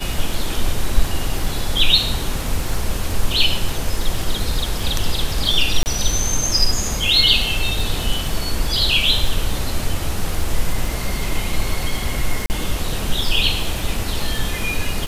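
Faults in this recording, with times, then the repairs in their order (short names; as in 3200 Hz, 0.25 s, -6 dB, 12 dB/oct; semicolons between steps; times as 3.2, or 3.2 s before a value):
crackle 36/s -25 dBFS
5.83–5.86 gap 29 ms
12.46–12.5 gap 39 ms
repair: de-click; interpolate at 5.83, 29 ms; interpolate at 12.46, 39 ms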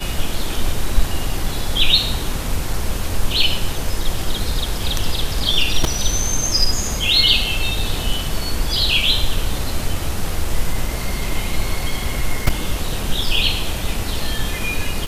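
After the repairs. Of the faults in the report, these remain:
none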